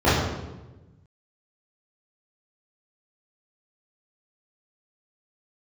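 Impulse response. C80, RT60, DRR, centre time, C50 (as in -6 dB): 3.0 dB, 1.1 s, -12.5 dB, 81 ms, -0.5 dB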